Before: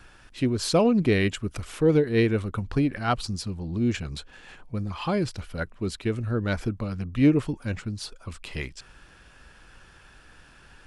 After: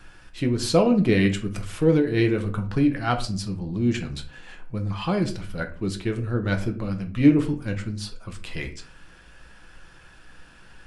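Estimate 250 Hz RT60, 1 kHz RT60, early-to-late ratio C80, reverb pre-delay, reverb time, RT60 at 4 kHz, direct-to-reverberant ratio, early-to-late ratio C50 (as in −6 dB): 0.55 s, 0.35 s, 17.5 dB, 5 ms, 0.45 s, 0.30 s, 4.5 dB, 12.5 dB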